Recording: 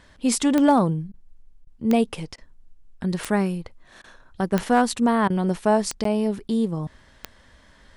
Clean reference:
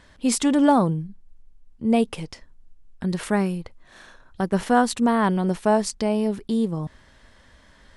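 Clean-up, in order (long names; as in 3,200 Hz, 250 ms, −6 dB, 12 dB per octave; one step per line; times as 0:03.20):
clipped peaks rebuilt −8.5 dBFS
click removal
repair the gap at 0:06.04, 13 ms
repair the gap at 0:01.12/0:01.65/0:02.36/0:04.02/0:05.28, 19 ms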